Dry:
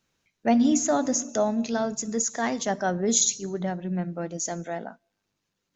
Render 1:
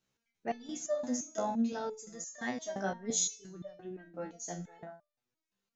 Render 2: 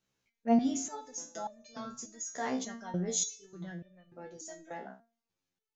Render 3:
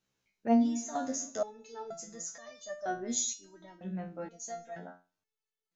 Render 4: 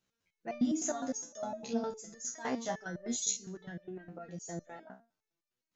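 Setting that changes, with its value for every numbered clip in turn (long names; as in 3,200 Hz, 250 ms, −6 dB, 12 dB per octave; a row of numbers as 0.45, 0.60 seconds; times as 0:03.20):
step-sequenced resonator, speed: 5.8, 3.4, 2.1, 9.8 Hertz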